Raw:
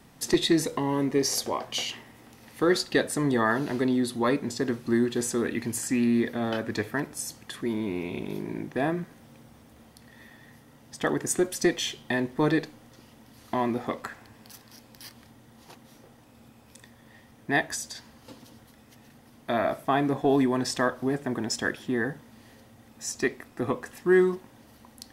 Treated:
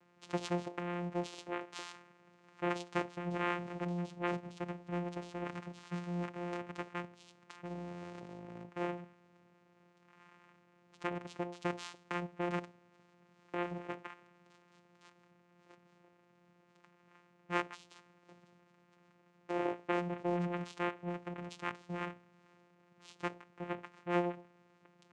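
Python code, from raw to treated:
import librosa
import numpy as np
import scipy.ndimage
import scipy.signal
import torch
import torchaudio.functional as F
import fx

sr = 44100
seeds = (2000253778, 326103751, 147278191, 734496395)

y = scipy.signal.sosfilt(scipy.signal.butter(2, 1600.0, 'lowpass', fs=sr, output='sos'), x)
y = np.diff(y, prepend=0.0)
y = fx.hum_notches(y, sr, base_hz=60, count=6)
y = fx.vocoder(y, sr, bands=4, carrier='saw', carrier_hz=175.0)
y = y * librosa.db_to_amplitude(11.5)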